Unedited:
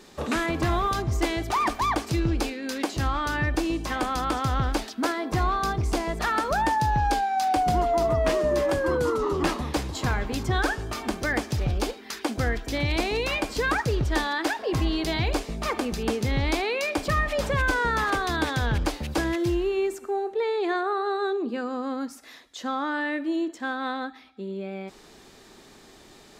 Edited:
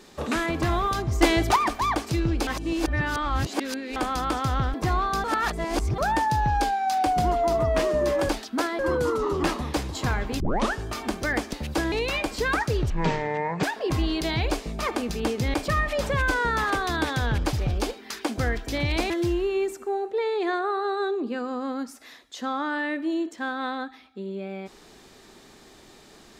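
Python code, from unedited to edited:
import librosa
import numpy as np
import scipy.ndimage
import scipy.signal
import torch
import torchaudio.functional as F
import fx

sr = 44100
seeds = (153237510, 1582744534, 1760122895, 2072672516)

y = fx.edit(x, sr, fx.clip_gain(start_s=1.21, length_s=0.35, db=6.5),
    fx.reverse_span(start_s=2.47, length_s=1.49),
    fx.move(start_s=4.74, length_s=0.5, to_s=8.79),
    fx.reverse_span(start_s=5.74, length_s=0.74),
    fx.tape_start(start_s=10.4, length_s=0.33),
    fx.swap(start_s=11.53, length_s=1.57, other_s=18.93, other_length_s=0.39),
    fx.speed_span(start_s=14.08, length_s=0.38, speed=0.52),
    fx.cut(start_s=16.37, length_s=0.57), tone=tone)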